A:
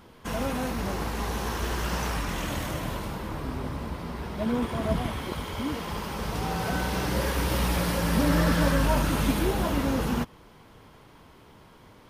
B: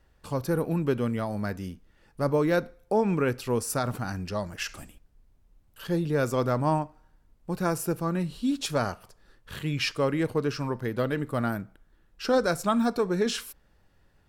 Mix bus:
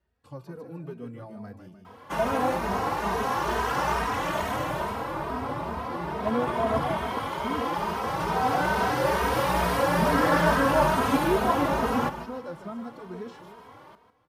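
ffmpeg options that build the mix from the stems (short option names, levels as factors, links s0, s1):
-filter_complex "[0:a]equalizer=f=900:t=o:w=2.4:g=13,adelay=1850,volume=0.841,asplit=2[s0][s1];[s1]volume=0.266[s2];[1:a]highshelf=f=4500:g=-8,acrossover=split=1300|5200[s3][s4][s5];[s3]acompressor=threshold=0.0562:ratio=4[s6];[s4]acompressor=threshold=0.00398:ratio=4[s7];[s5]acompressor=threshold=0.00126:ratio=4[s8];[s6][s7][s8]amix=inputs=3:normalize=0,volume=0.398,asplit=2[s9][s10];[s10]volume=0.422[s11];[s2][s11]amix=inputs=2:normalize=0,aecho=0:1:151|302|453|604|755|906:1|0.41|0.168|0.0689|0.0283|0.0116[s12];[s0][s9][s12]amix=inputs=3:normalize=0,highpass=64,asplit=2[s13][s14];[s14]adelay=2.9,afreqshift=2.3[s15];[s13][s15]amix=inputs=2:normalize=1"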